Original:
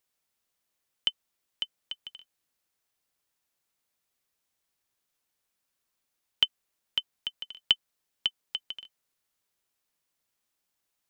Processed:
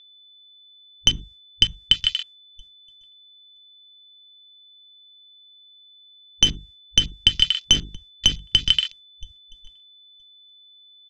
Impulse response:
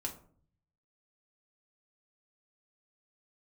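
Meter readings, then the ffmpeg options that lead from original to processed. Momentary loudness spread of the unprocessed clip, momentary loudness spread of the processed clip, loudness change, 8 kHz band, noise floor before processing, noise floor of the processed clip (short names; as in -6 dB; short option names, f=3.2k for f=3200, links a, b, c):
15 LU, 4 LU, +12.0 dB, n/a, -82 dBFS, -51 dBFS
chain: -filter_complex "[0:a]aeval=exprs='clip(val(0),-1,0.0299)':c=same,bass=f=250:g=6,treble=f=4k:g=10,bandreject=f=50:t=h:w=6,bandreject=f=100:t=h:w=6,bandreject=f=150:t=h:w=6,bandreject=f=200:t=h:w=6,bandreject=f=250:t=h:w=6,bandreject=f=300:t=h:w=6,bandreject=f=350:t=h:w=6,bandreject=f=400:t=h:w=6,bandreject=f=450:t=h:w=6,aecho=1:1:969|1938:0.0794|0.0151,acrossover=split=160[a][b];[a]acompressor=threshold=-32dB:ratio=6[c];[c][b]amix=inputs=2:normalize=0,agate=range=-33dB:threshold=-55dB:ratio=3:detection=peak,aeval=exprs='val(0)+0.00282*sin(2*PI*3500*n/s)':c=same,lowpass=5.1k,asplit=2[d][e];[e]equalizer=f=1.9k:w=0.95:g=9[f];[1:a]atrim=start_sample=2205,afade=t=out:st=0.17:d=0.01,atrim=end_sample=7938[g];[f][g]afir=irnorm=-1:irlink=0,volume=-11.5dB[h];[d][h]amix=inputs=2:normalize=0,afwtdn=0.00447,alimiter=level_in=20dB:limit=-1dB:release=50:level=0:latency=1,volume=-1dB"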